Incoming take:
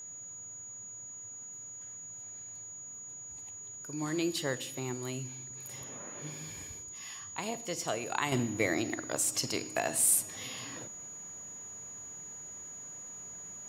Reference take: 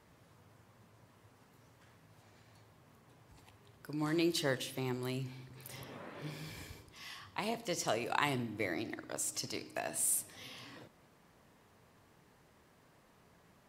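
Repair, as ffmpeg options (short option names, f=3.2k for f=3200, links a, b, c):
-af "bandreject=f=6.8k:w=30,asetnsamples=n=441:p=0,asendcmd='8.32 volume volume -7dB',volume=0dB"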